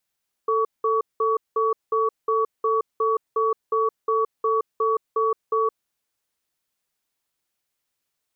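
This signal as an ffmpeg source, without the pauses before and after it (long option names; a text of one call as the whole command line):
ffmpeg -f lavfi -i "aevalsrc='0.0891*(sin(2*PI*444*t)+sin(2*PI*1130*t))*clip(min(mod(t,0.36),0.17-mod(t,0.36))/0.005,0,1)':duration=5.27:sample_rate=44100" out.wav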